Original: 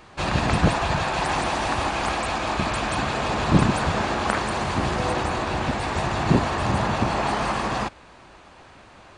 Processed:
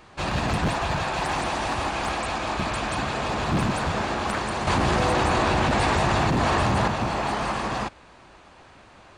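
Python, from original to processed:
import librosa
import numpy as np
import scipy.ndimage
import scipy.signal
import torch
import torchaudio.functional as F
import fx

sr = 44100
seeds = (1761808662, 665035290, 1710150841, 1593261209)

y = np.clip(x, -10.0 ** (-17.0 / 20.0), 10.0 ** (-17.0 / 20.0))
y = fx.env_flatten(y, sr, amount_pct=100, at=(4.67, 6.88))
y = y * 10.0 ** (-2.0 / 20.0)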